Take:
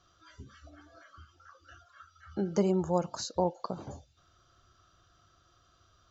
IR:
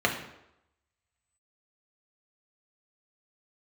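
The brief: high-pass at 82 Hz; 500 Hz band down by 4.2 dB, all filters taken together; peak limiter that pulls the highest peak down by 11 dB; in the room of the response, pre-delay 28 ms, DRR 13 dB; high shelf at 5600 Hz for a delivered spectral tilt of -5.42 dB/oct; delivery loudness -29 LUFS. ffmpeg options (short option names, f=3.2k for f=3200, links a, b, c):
-filter_complex "[0:a]highpass=82,equalizer=f=500:t=o:g=-5.5,highshelf=f=5.6k:g=-4,alimiter=level_in=3.5dB:limit=-24dB:level=0:latency=1,volume=-3.5dB,asplit=2[a][b];[1:a]atrim=start_sample=2205,adelay=28[c];[b][c]afir=irnorm=-1:irlink=0,volume=-26.5dB[d];[a][d]amix=inputs=2:normalize=0,volume=10dB"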